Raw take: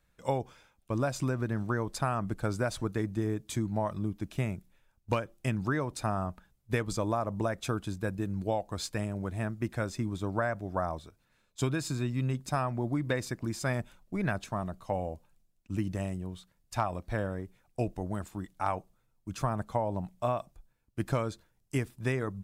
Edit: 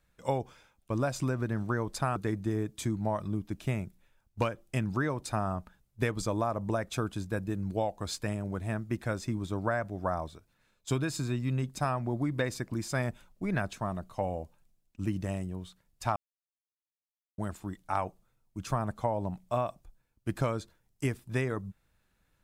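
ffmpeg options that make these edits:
ffmpeg -i in.wav -filter_complex "[0:a]asplit=4[link_01][link_02][link_03][link_04];[link_01]atrim=end=2.162[link_05];[link_02]atrim=start=2.868:end=16.87,asetpts=PTS-STARTPTS,afade=type=out:start_time=13.998:duration=0.004:curve=hsin[link_06];[link_03]atrim=start=16.87:end=18.09,asetpts=PTS-STARTPTS,volume=0[link_07];[link_04]atrim=start=18.09,asetpts=PTS-STARTPTS,afade=type=in:duration=0.004:curve=hsin[link_08];[link_06][link_07][link_08]concat=n=3:v=0:a=1[link_09];[link_05][link_09]acrossfade=duration=0.004:curve1=hsin:curve2=hsin" out.wav

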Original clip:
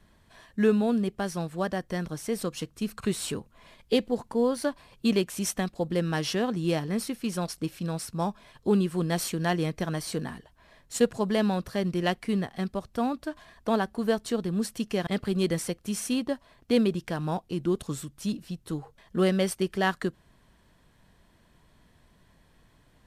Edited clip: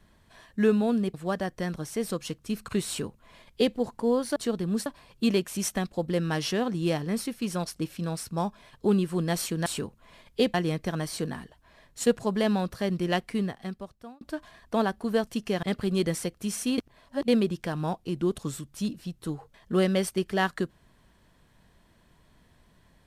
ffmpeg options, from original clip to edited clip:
ffmpeg -i in.wav -filter_complex "[0:a]asplit=10[link_01][link_02][link_03][link_04][link_05][link_06][link_07][link_08][link_09][link_10];[link_01]atrim=end=1.142[link_11];[link_02]atrim=start=1.458:end=4.682[link_12];[link_03]atrim=start=14.208:end=14.712[link_13];[link_04]atrim=start=4.678:end=9.482[link_14];[link_05]atrim=start=3.188:end=4.072[link_15];[link_06]atrim=start=9.478:end=13.15,asetpts=PTS-STARTPTS,afade=type=out:start_time=2.752:duration=0.92[link_16];[link_07]atrim=start=13.15:end=14.212,asetpts=PTS-STARTPTS,afade=type=in:duration=0.004:curve=hsin[link_17];[link_08]atrim=start=14.708:end=16.222[link_18];[link_09]atrim=start=16.218:end=16.722,asetpts=PTS-STARTPTS,areverse[link_19];[link_10]atrim=start=16.718[link_20];[link_11][link_12]acrossfade=duration=0.004:curve1=hsin:curve2=hsin[link_21];[link_21][link_13]acrossfade=duration=0.004:curve1=hsin:curve2=hsin[link_22];[link_22][link_14]acrossfade=duration=0.004:curve1=hsin:curve2=hsin[link_23];[link_23][link_15]acrossfade=duration=0.004:curve1=hsin:curve2=hsin[link_24];[link_16][link_17]concat=n=2:v=0:a=1[link_25];[link_24][link_25]acrossfade=duration=0.004:curve1=hsin:curve2=hsin[link_26];[link_26][link_18]acrossfade=duration=0.004:curve1=hsin:curve2=hsin[link_27];[link_27][link_19]acrossfade=duration=0.004:curve1=hsin:curve2=hsin[link_28];[link_28][link_20]acrossfade=duration=0.004:curve1=hsin:curve2=hsin" out.wav

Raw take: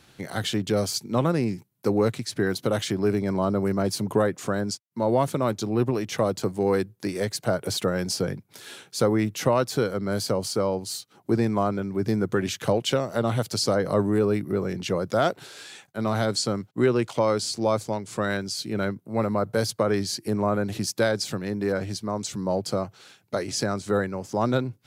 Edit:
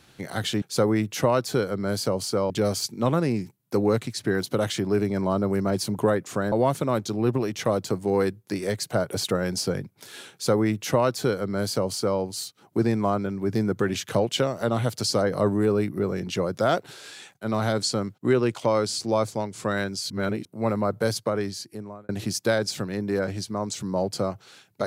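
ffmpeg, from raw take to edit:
ffmpeg -i in.wav -filter_complex "[0:a]asplit=7[link_01][link_02][link_03][link_04][link_05][link_06][link_07];[link_01]atrim=end=0.622[link_08];[link_02]atrim=start=8.848:end=10.732[link_09];[link_03]atrim=start=0.618:end=4.642[link_10];[link_04]atrim=start=5.048:end=18.632[link_11];[link_05]atrim=start=18.628:end=18.982,asetpts=PTS-STARTPTS,areverse[link_12];[link_06]atrim=start=18.978:end=20.62,asetpts=PTS-STARTPTS,afade=type=out:start_time=0.612:duration=1.03[link_13];[link_07]atrim=start=20.62,asetpts=PTS-STARTPTS,afade=type=in:duration=0.004:curve=hsin[link_14];[link_08][link_09]acrossfade=duration=0.004:curve1=hsin:curve2=hsin[link_15];[link_15][link_10]acrossfade=duration=0.004:curve1=hsin:curve2=hsin[link_16];[link_16][link_11]acrossfade=duration=0.004:curve1=hsin:curve2=hsin[link_17];[link_17][link_12]acrossfade=duration=0.004:curve1=hsin:curve2=hsin[link_18];[link_13][link_14]concat=n=2:v=0:a=1[link_19];[link_18][link_19]acrossfade=duration=0.004:curve1=hsin:curve2=hsin" out.wav

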